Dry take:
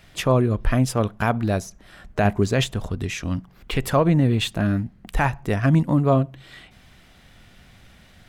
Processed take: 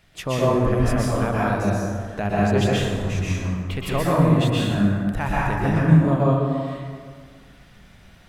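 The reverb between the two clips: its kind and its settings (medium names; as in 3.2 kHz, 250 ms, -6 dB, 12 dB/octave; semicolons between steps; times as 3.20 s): plate-style reverb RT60 1.9 s, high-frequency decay 0.5×, pre-delay 110 ms, DRR -7 dB; trim -7 dB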